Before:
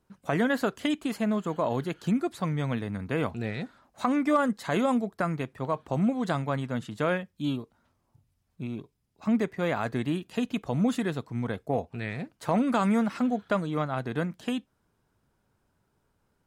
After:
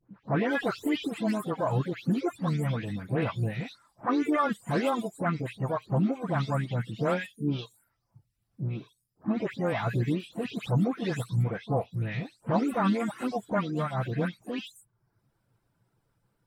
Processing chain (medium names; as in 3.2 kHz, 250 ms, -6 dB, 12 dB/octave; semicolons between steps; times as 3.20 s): delay that grows with frequency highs late, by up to 273 ms; band-stop 6.5 kHz, Q 7.1; reverb removal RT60 0.63 s; peaking EQ 120 Hz +10 dB 0.35 oct; harmony voices +3 st -16 dB, +7 st -14 dB